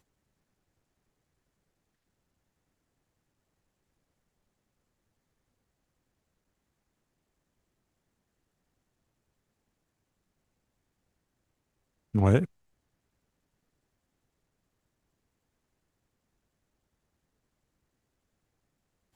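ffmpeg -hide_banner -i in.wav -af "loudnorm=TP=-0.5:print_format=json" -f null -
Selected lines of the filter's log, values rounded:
"input_i" : "-26.2",
"input_tp" : "-8.6",
"input_lra" : "0.0",
"input_thresh" : "-36.8",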